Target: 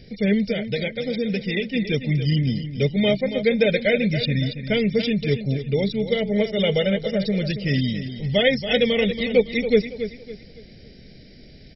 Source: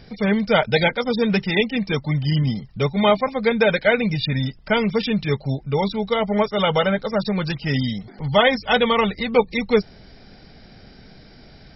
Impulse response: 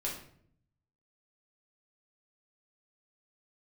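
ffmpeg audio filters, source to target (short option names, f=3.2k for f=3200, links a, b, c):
-filter_complex "[0:a]asettb=1/sr,asplit=3[a][b][c];[a]atrim=end=0.474[d];[b]atrim=start=0.47:end=1.74,asetpts=PTS-STARTPTS,afade=t=in:d=0.004:c=qsin,afade=t=out:st=1.266:d=0.004:c=qsin,acompressor=threshold=-21dB:ratio=6[e];[c]atrim=start=1.736[f];[d][e]acrossfade=d=0.004:c1=hsin:c2=qsin[g];[g][f]acrossfade=d=0.004:c1=qsin:c2=hsin,firequalizer=gain_entry='entry(550,0);entry(1000,-29);entry(1900,-1)':delay=0.05:min_phase=1,asplit=2[h][i];[i]aecho=0:1:279|558|837|1116:0.299|0.102|0.0345|0.0117[j];[h][j]amix=inputs=2:normalize=0"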